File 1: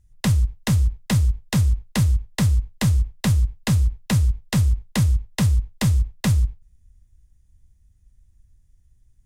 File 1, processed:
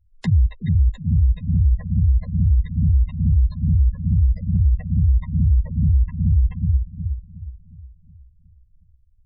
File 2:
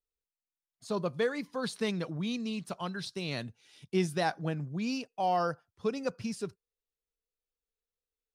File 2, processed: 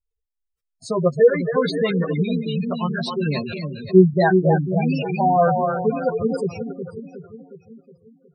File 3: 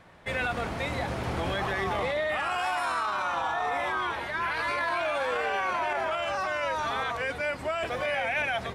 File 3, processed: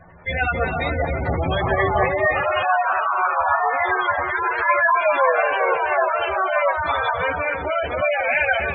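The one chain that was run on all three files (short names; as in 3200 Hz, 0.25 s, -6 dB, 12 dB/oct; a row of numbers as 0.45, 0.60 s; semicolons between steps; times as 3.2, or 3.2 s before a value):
split-band echo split 440 Hz, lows 0.364 s, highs 0.268 s, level -5 dB; chorus voices 6, 0.41 Hz, delay 12 ms, depth 1.5 ms; spectral gate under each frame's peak -15 dB strong; limiter -14.5 dBFS; upward expander 1.5:1, over -33 dBFS; match loudness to -20 LUFS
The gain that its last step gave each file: +5.0, +19.0, +13.5 dB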